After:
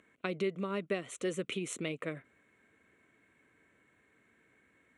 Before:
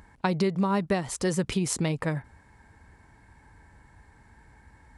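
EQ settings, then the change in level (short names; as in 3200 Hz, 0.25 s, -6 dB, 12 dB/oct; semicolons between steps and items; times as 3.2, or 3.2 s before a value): BPF 390–6300 Hz; bell 1700 Hz -10.5 dB 0.4 oct; fixed phaser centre 2100 Hz, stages 4; 0.0 dB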